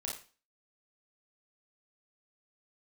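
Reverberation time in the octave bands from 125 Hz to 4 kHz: 0.35, 0.40, 0.35, 0.35, 0.35, 0.35 seconds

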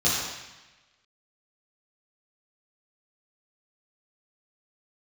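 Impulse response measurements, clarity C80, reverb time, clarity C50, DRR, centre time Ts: 2.0 dB, 1.1 s, −0.5 dB, −9.5 dB, 82 ms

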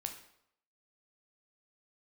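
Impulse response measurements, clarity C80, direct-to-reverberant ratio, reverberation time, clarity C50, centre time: 11.5 dB, 4.5 dB, 0.75 s, 8.5 dB, 16 ms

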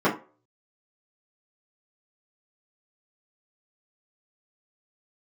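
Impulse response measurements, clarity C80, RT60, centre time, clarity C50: 15.5 dB, 0.35 s, 23 ms, 10.5 dB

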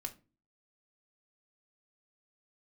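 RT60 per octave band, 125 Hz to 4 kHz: 0.50, 0.55, 0.35, 0.30, 0.25, 0.20 seconds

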